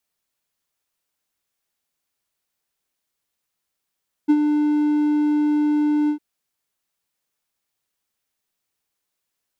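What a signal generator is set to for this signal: ADSR triangle 298 Hz, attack 22 ms, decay 55 ms, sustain -6 dB, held 1.81 s, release 94 ms -8 dBFS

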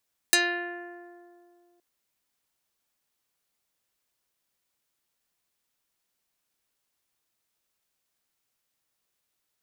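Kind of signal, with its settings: plucked string F4, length 1.47 s, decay 2.48 s, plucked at 0.31, dark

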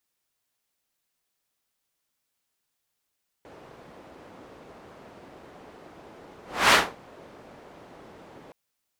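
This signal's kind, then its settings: whoosh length 5.07 s, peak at 3.27, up 0.30 s, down 0.26 s, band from 510 Hz, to 1700 Hz, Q 0.75, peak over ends 32 dB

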